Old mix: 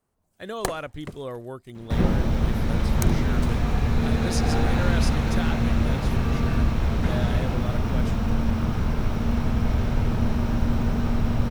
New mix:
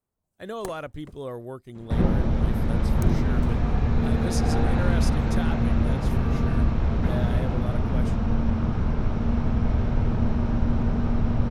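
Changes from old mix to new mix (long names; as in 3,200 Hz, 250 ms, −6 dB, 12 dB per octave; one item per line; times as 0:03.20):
first sound −9.5 dB
second sound: add high-frequency loss of the air 120 metres
master: add parametric band 3,000 Hz −4.5 dB 2.2 octaves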